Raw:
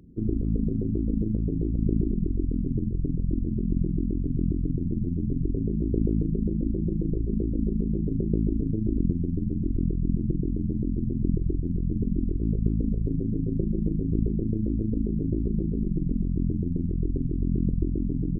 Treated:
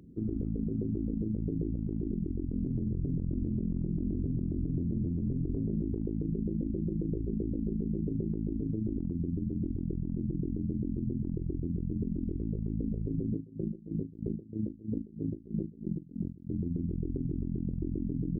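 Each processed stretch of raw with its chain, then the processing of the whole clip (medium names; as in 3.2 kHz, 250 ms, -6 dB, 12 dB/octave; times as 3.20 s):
2.51–5.80 s: bass shelf 430 Hz +5 dB + hum notches 50/100/150/200/250/300/350/400/450/500 Hz + loudspeaker Doppler distortion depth 0.16 ms
13.33–16.53 s: high-pass 75 Hz + logarithmic tremolo 3.1 Hz, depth 24 dB
whole clip: high-pass 93 Hz 6 dB/octave; peak limiter -23.5 dBFS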